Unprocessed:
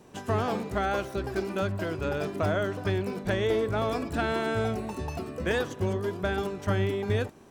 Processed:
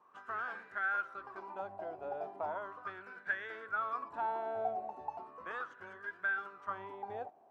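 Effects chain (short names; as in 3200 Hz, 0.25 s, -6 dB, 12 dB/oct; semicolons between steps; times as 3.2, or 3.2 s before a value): wah 0.37 Hz 720–1600 Hz, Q 9.6; gain +5 dB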